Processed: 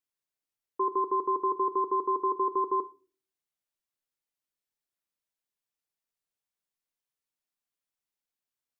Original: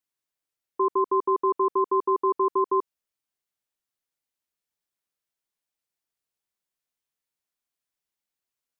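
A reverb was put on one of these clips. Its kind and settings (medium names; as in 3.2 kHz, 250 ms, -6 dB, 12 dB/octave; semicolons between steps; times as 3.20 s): simulated room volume 240 m³, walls furnished, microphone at 0.41 m; trim -4.5 dB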